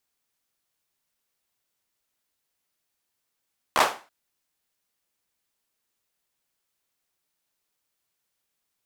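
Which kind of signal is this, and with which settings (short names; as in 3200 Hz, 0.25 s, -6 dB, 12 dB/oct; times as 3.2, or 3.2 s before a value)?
hand clap length 0.33 s, bursts 4, apart 14 ms, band 850 Hz, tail 0.34 s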